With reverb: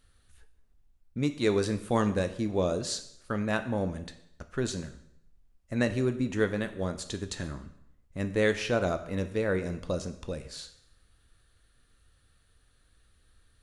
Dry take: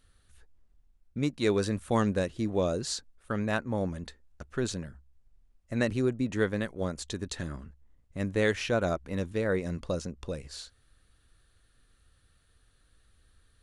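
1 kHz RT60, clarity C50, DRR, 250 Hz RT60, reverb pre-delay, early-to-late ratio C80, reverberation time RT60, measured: 0.75 s, 12.5 dB, 8.5 dB, 0.75 s, 6 ms, 15.0 dB, 0.75 s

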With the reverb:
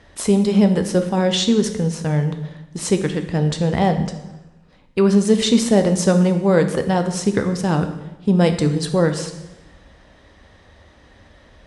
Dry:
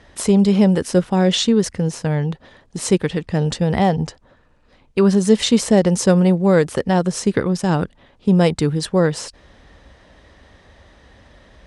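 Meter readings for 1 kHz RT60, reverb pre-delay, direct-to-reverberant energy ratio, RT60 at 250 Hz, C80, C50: 0.90 s, 9 ms, 7.0 dB, 1.2 s, 12.0 dB, 10.0 dB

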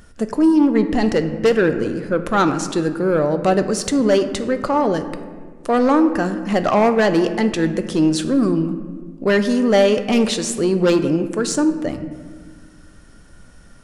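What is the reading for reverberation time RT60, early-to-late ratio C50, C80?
1.6 s, 10.5 dB, 12.0 dB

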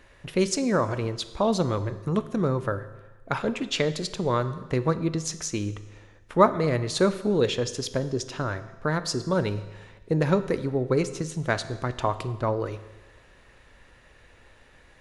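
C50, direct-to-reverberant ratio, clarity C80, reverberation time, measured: 14.0 dB, 11.5 dB, 15.5 dB, 1.2 s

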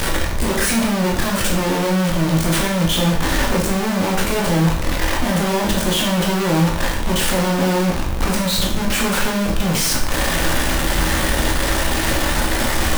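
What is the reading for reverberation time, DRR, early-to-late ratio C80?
0.60 s, -2.0 dB, 9.0 dB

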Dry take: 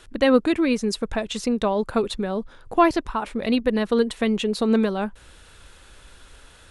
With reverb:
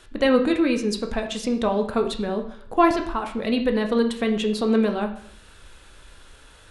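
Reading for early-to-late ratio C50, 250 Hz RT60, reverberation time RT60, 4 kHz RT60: 9.5 dB, 0.60 s, 0.60 s, 0.55 s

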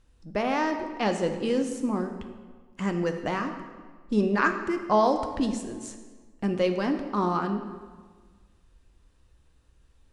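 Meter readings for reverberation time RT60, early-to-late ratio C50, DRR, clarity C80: 1.5 s, 8.0 dB, 5.5 dB, 9.5 dB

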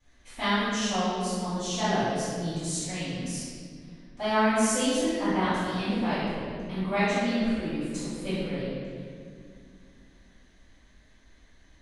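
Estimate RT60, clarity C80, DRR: 2.2 s, -1.5 dB, -17.0 dB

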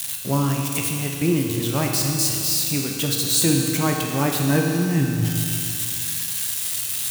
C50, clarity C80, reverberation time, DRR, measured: 1.5 dB, 3.0 dB, 2.6 s, 0.0 dB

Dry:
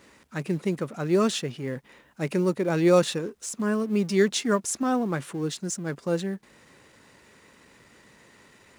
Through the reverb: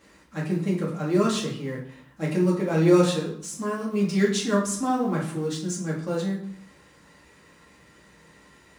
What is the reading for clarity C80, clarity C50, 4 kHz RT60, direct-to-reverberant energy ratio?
10.0 dB, 6.0 dB, 0.50 s, -4.0 dB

